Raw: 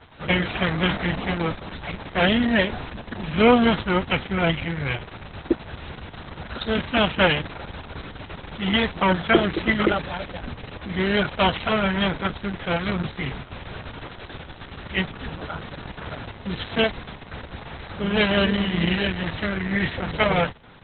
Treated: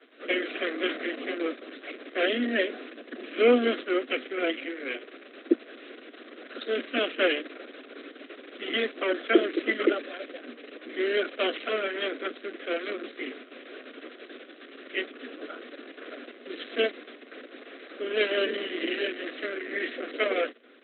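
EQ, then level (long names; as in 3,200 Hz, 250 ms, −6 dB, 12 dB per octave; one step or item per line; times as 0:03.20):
Butterworth high-pass 240 Hz 96 dB per octave
high-frequency loss of the air 290 metres
phaser with its sweep stopped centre 370 Hz, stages 4
0.0 dB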